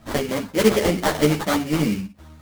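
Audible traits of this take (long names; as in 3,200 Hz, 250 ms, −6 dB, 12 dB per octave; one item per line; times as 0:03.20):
aliases and images of a low sample rate 2,600 Hz, jitter 20%
a shimmering, thickened sound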